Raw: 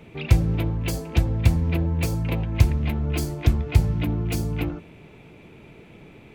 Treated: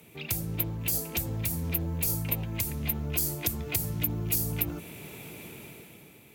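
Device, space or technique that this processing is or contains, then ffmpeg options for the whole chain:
FM broadcast chain: -filter_complex "[0:a]highpass=78,dynaudnorm=f=120:g=13:m=13dB,acrossover=split=120|6200[a][b][c];[a]acompressor=threshold=-23dB:ratio=4[d];[b]acompressor=threshold=-23dB:ratio=4[e];[c]acompressor=threshold=-40dB:ratio=4[f];[d][e][f]amix=inputs=3:normalize=0,aemphasis=mode=production:type=50fm,alimiter=limit=-14dB:level=0:latency=1:release=61,asoftclip=type=hard:threshold=-17dB,lowpass=f=15k:w=0.5412,lowpass=f=15k:w=1.3066,aemphasis=mode=production:type=50fm,volume=-8.5dB"

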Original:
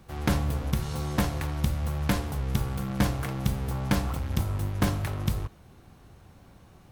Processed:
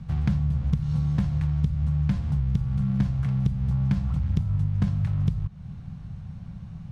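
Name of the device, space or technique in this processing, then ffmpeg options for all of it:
jukebox: -af "lowpass=5.7k,lowshelf=f=240:t=q:w=3:g=12.5,acompressor=threshold=-23dB:ratio=4"

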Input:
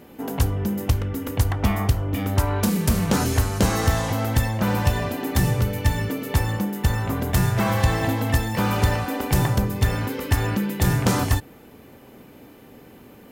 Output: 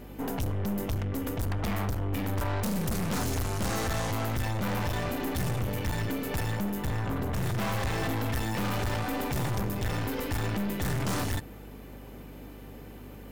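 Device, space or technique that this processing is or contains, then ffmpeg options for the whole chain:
valve amplifier with mains hum: -filter_complex "[0:a]aeval=exprs='(tanh(28.2*val(0)+0.5)-tanh(0.5))/28.2':c=same,aeval=exprs='val(0)+0.00447*(sin(2*PI*50*n/s)+sin(2*PI*2*50*n/s)/2+sin(2*PI*3*50*n/s)/3+sin(2*PI*4*50*n/s)/4+sin(2*PI*5*50*n/s)/5)':c=same,asettb=1/sr,asplit=3[a][b][c];[a]atrim=end=6.874[d];[b]atrim=start=6.87:end=7.43,asetpts=PTS-STARTPTS,afade=t=in:d=0.004:c=qsin,afade=t=out:st=0.556:d=0.004:c=qsin,highshelf=f=3.7k:g=-7.5[e];[c]atrim=start=7.426[f];[d][e]acrossfade=d=0.004:c1=hsin:c2=qsin[g];[g][f]acrossfade=d=0.004:c1=qsin:c2=hsin,volume=1dB"

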